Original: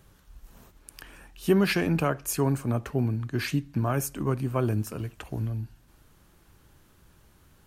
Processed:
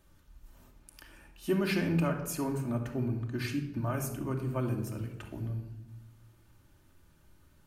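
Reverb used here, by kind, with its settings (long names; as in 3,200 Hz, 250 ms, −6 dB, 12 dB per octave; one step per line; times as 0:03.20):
rectangular room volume 3,300 cubic metres, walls furnished, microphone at 2.6 metres
level −8.5 dB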